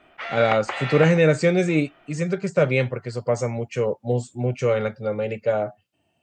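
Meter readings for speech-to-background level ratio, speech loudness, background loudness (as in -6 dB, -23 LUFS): 7.0 dB, -22.5 LUFS, -29.5 LUFS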